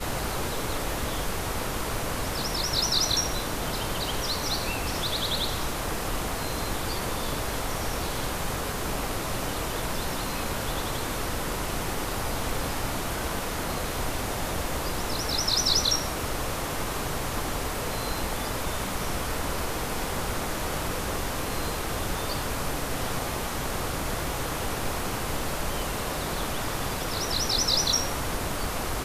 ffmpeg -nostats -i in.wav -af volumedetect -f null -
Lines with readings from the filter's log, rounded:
mean_volume: -28.7 dB
max_volume: -10.8 dB